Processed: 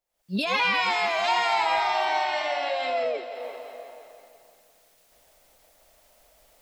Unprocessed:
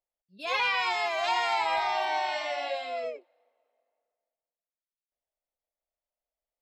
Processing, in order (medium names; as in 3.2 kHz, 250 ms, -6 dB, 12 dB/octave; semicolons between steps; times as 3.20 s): recorder AGC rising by 74 dB/s; 2.24–3.15 s: treble shelf 8.7 kHz -10 dB; on a send: multi-head delay 173 ms, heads first and second, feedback 50%, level -15 dB; on the sum: trim +3.5 dB